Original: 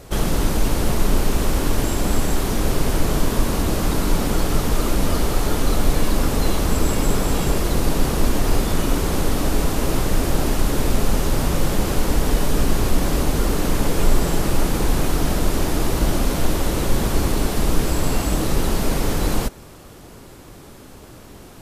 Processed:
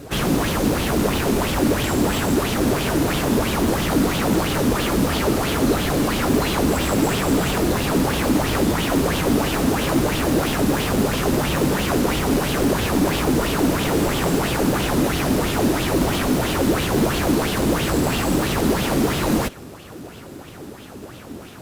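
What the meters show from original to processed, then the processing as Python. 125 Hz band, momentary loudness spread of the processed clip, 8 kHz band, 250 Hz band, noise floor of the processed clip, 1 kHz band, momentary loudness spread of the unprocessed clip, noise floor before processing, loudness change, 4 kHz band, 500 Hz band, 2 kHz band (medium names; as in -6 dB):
-0.5 dB, 2 LU, 0.0 dB, +4.5 dB, -39 dBFS, +3.5 dB, 1 LU, -42 dBFS, +2.0 dB, +3.0 dB, +3.5 dB, +5.0 dB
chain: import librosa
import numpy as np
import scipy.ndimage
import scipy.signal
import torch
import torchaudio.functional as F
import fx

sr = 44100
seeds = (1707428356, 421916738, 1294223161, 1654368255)

p1 = scipy.signal.sosfilt(scipy.signal.butter(2, 82.0, 'highpass', fs=sr, output='sos'), x)
p2 = fx.sample_hold(p1, sr, seeds[0], rate_hz=1100.0, jitter_pct=0)
p3 = p1 + (p2 * librosa.db_to_amplitude(-4.5))
p4 = 10.0 ** (-17.0 / 20.0) * (np.abs((p3 / 10.0 ** (-17.0 / 20.0) + 3.0) % 4.0 - 2.0) - 1.0)
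y = fx.bell_lfo(p4, sr, hz=3.0, low_hz=240.0, high_hz=3300.0, db=11)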